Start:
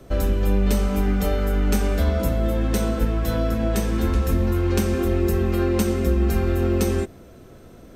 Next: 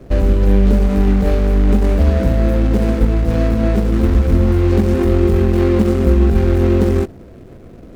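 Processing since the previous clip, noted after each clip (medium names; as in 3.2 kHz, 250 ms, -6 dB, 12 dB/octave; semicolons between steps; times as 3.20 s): median filter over 41 samples; trim +8 dB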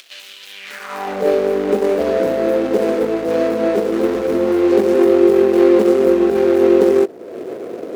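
upward compressor, threshold -18 dBFS; high-pass sweep 3.2 kHz -> 420 Hz, 0.54–1.27 s; trim +1 dB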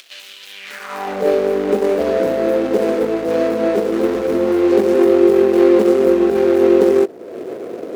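no audible change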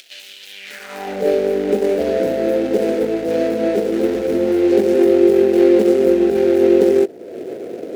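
peaking EQ 1.1 kHz -13 dB 0.6 oct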